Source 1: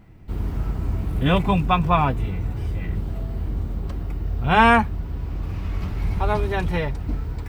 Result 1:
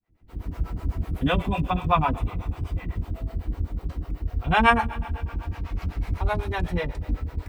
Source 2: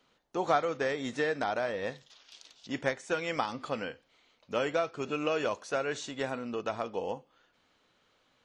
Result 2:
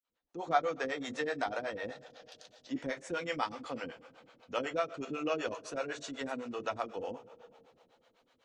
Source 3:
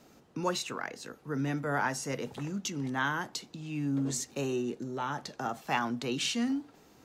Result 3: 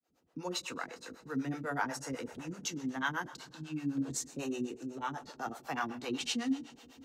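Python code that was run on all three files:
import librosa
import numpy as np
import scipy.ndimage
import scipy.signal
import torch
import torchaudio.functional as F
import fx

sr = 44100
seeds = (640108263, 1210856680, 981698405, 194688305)

y = fx.fade_in_head(x, sr, length_s=0.64)
y = fx.rev_double_slope(y, sr, seeds[0], early_s=0.23, late_s=3.1, knee_db=-18, drr_db=6.5)
y = fx.harmonic_tremolo(y, sr, hz=8.0, depth_pct=100, crossover_hz=410.0)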